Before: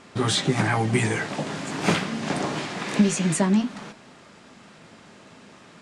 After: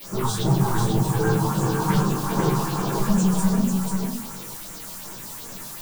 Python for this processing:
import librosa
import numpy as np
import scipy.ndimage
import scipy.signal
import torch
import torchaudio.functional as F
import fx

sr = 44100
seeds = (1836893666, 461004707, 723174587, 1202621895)

y = fx.high_shelf(x, sr, hz=3900.0, db=-7.5)
y = fx.hum_notches(y, sr, base_hz=50, count=4)
y = fx.rider(y, sr, range_db=10, speed_s=0.5)
y = fx.fixed_phaser(y, sr, hz=410.0, stages=8)
y = 10.0 ** (-25.5 / 20.0) * np.tanh(y / 10.0 ** (-25.5 / 20.0))
y = fx.chorus_voices(y, sr, voices=4, hz=0.71, base_ms=25, depth_ms=4.2, mix_pct=60)
y = fx.granulator(y, sr, seeds[0], grain_ms=100.0, per_s=20.0, spray_ms=100.0, spread_st=0)
y = fx.quant_dither(y, sr, seeds[1], bits=8, dither='triangular')
y = fx.phaser_stages(y, sr, stages=4, low_hz=300.0, high_hz=3900.0, hz=2.6, feedback_pct=25)
y = y + 10.0 ** (-4.5 / 20.0) * np.pad(y, (int(491 * sr / 1000.0), 0))[:len(y)]
y = fx.room_shoebox(y, sr, seeds[2], volume_m3=120.0, walls='furnished', distance_m=2.4)
y = y * 10.0 ** (6.5 / 20.0)